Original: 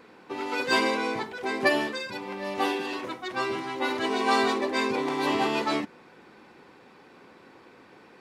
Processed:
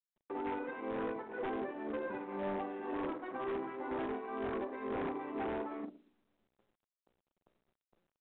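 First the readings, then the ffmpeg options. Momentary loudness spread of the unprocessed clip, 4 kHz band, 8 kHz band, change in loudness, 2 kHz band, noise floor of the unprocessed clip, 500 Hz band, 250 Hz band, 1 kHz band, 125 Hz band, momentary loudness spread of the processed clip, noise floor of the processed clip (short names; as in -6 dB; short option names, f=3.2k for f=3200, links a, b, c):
10 LU, -27.0 dB, under -35 dB, -12.0 dB, -18.0 dB, -54 dBFS, -9.5 dB, -9.5 dB, -13.0 dB, -8.0 dB, 2 LU, under -85 dBFS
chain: -filter_complex "[0:a]aresample=11025,acrusher=bits=6:mix=0:aa=0.000001,aresample=44100,acompressor=threshold=-33dB:ratio=16,highpass=240,lowpass=2.7k,asplit=2[a][b];[b]adelay=45,volume=-7.5dB[c];[a][c]amix=inputs=2:normalize=0,alimiter=level_in=6.5dB:limit=-24dB:level=0:latency=1:release=61,volume=-6.5dB,acrossover=split=1500[d][e];[d]aeval=exprs='val(0)*(1-0.7/2+0.7/2*cos(2*PI*2*n/s))':c=same[f];[e]aeval=exprs='val(0)*(1-0.7/2-0.7/2*cos(2*PI*2*n/s))':c=same[g];[f][g]amix=inputs=2:normalize=0,aecho=1:1:116|232|348|464|580|696:0.2|0.112|0.0626|0.035|0.0196|0.011,adynamicsmooth=sensitivity=1:basefreq=910,anlmdn=0.000398,bandreject=f=60:t=h:w=6,bandreject=f=120:t=h:w=6,bandreject=f=180:t=h:w=6,bandreject=f=240:t=h:w=6,bandreject=f=300:t=h:w=6,bandreject=f=360:t=h:w=6,bandreject=f=420:t=h:w=6,bandreject=f=480:t=h:w=6,bandreject=f=540:t=h:w=6,bandreject=f=600:t=h:w=6,aeval=exprs='0.0106*(abs(mod(val(0)/0.0106+3,4)-2)-1)':c=same,volume=8dB" -ar 8000 -c:a pcm_mulaw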